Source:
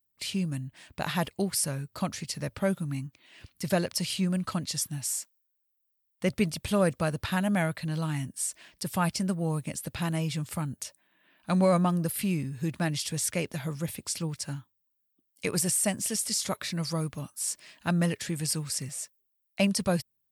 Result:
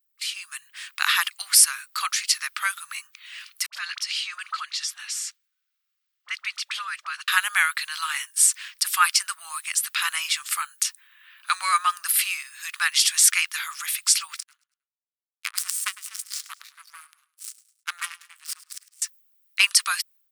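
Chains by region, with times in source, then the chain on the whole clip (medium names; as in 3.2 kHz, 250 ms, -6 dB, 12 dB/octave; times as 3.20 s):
3.66–7.28 s: three-band isolator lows -21 dB, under 580 Hz, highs -17 dB, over 6.2 kHz + phase dispersion highs, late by 67 ms, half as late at 640 Hz + compression 2.5:1, threshold -42 dBFS
14.40–19.02 s: power-law waveshaper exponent 3 + feedback delay 104 ms, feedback 39%, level -18 dB
whole clip: level rider gain up to 10.5 dB; elliptic high-pass 1.2 kHz, stop band 60 dB; trim +4.5 dB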